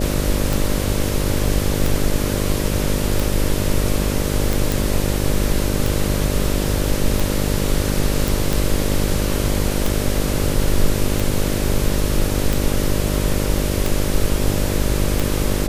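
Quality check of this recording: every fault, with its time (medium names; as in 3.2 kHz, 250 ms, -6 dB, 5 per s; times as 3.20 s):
buzz 50 Hz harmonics 12 -22 dBFS
tick 45 rpm
4.72 s: pop
8.28 s: pop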